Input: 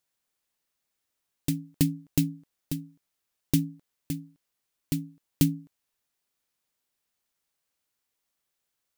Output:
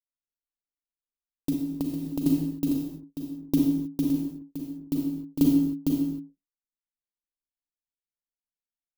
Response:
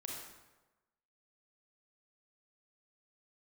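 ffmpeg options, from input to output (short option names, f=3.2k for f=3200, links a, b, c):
-filter_complex "[0:a]aecho=1:1:455:0.631[a];[1:a]atrim=start_sample=2205,afade=t=out:st=0.37:d=0.01,atrim=end_sample=16758[b];[a][b]afir=irnorm=-1:irlink=0,asettb=1/sr,asplit=3[c][d][e];[c]atrim=end=1.534[f];[d]atrim=start=1.53:end=2.26,asetpts=PTS-STARTPTS,afade=t=in:d=0.004:c=qsin,afade=t=out:st=0.726:d=0.004:c=qsin,acompressor=threshold=-32dB:ratio=6[g];[e]atrim=start=2.256[h];[f][g]acrossfade=d=0.004:c1=hsin:c2=qsin[i];[i][h]acrossfade=d=0.004:c1=qsin:c2=hsin,anlmdn=0.000398,equalizer=f=125:t=o:w=1:g=-8,equalizer=f=250:t=o:w=1:g=10,equalizer=f=500:t=o:w=1:g=4,equalizer=f=1k:t=o:w=1:g=8,equalizer=f=2k:t=o:w=1:g=-9,equalizer=f=8k:t=o:w=1:g=-7"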